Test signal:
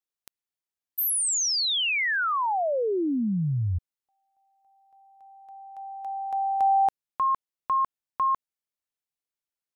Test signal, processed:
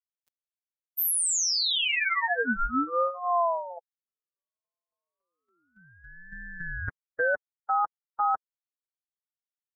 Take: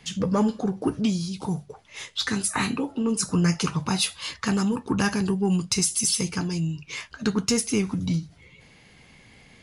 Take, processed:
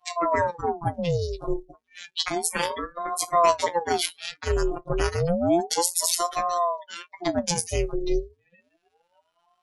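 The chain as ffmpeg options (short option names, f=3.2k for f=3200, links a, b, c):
-af "afftfilt=real='hypot(re,im)*cos(PI*b)':imag='0':win_size=1024:overlap=0.75,afftdn=nr=24:nf=-39,aeval=exprs='val(0)*sin(2*PI*540*n/s+540*0.65/0.31*sin(2*PI*0.31*n/s))':c=same,volume=5.5dB"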